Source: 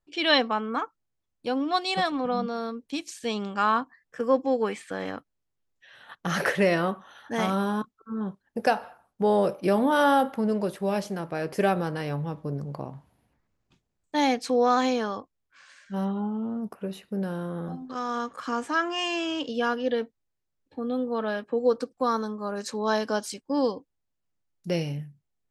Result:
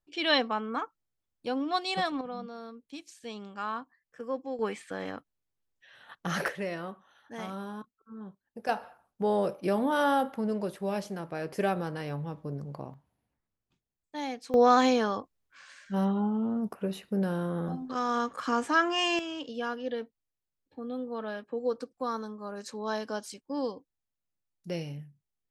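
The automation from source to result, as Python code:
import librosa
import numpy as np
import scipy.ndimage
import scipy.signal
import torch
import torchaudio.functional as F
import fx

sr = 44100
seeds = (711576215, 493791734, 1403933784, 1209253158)

y = fx.gain(x, sr, db=fx.steps((0.0, -4.0), (2.21, -11.5), (4.59, -4.0), (6.48, -12.5), (8.69, -5.0), (12.94, -12.0), (14.54, 1.0), (19.19, -7.5)))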